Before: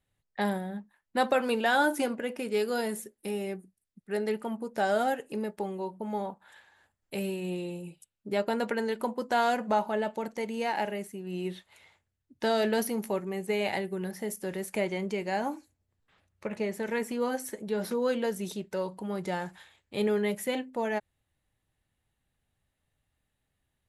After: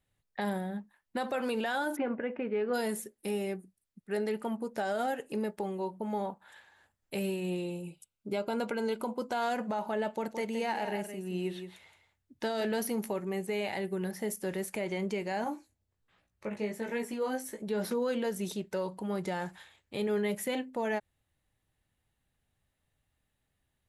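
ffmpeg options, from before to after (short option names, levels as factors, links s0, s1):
-filter_complex "[0:a]asplit=3[s0][s1][s2];[s0]afade=t=out:st=1.95:d=0.02[s3];[s1]lowpass=f=2300:w=0.5412,lowpass=f=2300:w=1.3066,afade=t=in:st=1.95:d=0.02,afade=t=out:st=2.73:d=0.02[s4];[s2]afade=t=in:st=2.73:d=0.02[s5];[s3][s4][s5]amix=inputs=3:normalize=0,asettb=1/sr,asplit=3[s6][s7][s8];[s6]atrim=end=7.644[s9];[s7]atrim=start=7.64:end=9.42,asetpts=PTS-STARTPTS,afade=t=in:d=0.004:c=qsin,afade=t=out:st=1.776:d=0.004:c=qsin,asuperstop=centerf=1800:order=4:qfactor=6.1[s10];[s8]atrim=start=9.416[s11];[s9][s10]acrossfade=d=0.004:c1=hsin:c2=qsin[s12];[s12][s11]acrossfade=d=0.004:c1=qsin:c2=hsin,asettb=1/sr,asplit=3[s13][s14][s15];[s13]atrim=end=10.144[s16];[s14]atrim=start=10.14:end=12.65,asetpts=PTS-STARTPTS,afade=t=in:d=0.004:c=qsin,afade=t=out:st=2.506:d=0.004:c=qsin,aecho=1:1:169:0.335,atrim=end_sample=110691[s17];[s15]atrim=start=12.646[s18];[s16][s17]acrossfade=d=0.004:c1=hsin:c2=qsin[s19];[s19][s18]acrossfade=d=0.004:c1=qsin:c2=hsin,asettb=1/sr,asplit=3[s20][s21][s22];[s20]atrim=end=15.444[s23];[s21]atrim=start=15.44:end=17.62,asetpts=PTS-STARTPTS,afade=t=in:d=0.004:c=qsin,afade=t=out:st=2.176:d=0.004:c=qsin,flanger=delay=16.5:depth=2.9:speed=1.3[s24];[s22]atrim=start=17.616[s25];[s23][s24]acrossfade=d=0.004:c1=hsin:c2=qsin[s26];[s26][s25]acrossfade=d=0.004:c1=qsin:c2=hsin,alimiter=limit=0.0631:level=0:latency=1:release=62"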